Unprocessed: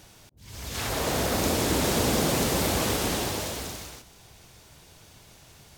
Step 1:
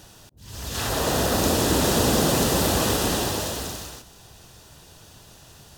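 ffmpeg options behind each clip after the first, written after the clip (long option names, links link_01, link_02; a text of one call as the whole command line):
ffmpeg -i in.wav -af "bandreject=frequency=2200:width=5.3,volume=4dB" out.wav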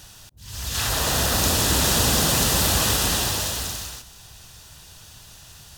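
ffmpeg -i in.wav -af "equalizer=frequency=370:width_type=o:width=2.6:gain=-11.5,volume=5dB" out.wav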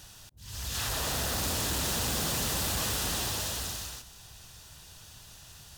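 ffmpeg -i in.wav -af "asoftclip=type=tanh:threshold=-22.5dB,volume=-5dB" out.wav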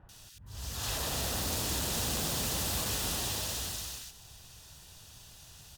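ffmpeg -i in.wav -filter_complex "[0:a]acrossover=split=1500[link_01][link_02];[link_02]adelay=90[link_03];[link_01][link_03]amix=inputs=2:normalize=0,volume=-2dB" out.wav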